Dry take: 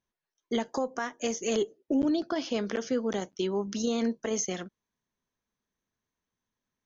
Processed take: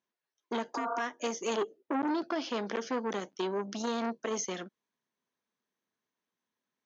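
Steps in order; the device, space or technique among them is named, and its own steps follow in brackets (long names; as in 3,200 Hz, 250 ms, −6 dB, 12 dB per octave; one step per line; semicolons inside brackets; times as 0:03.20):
public-address speaker with an overloaded transformer (saturating transformer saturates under 920 Hz; band-pass filter 220–5,600 Hz)
0:00.78–0:00.99: healed spectral selection 390–1,600 Hz after
0:01.54–0:02.09: high-shelf EQ 4,500 Hz −5.5 dB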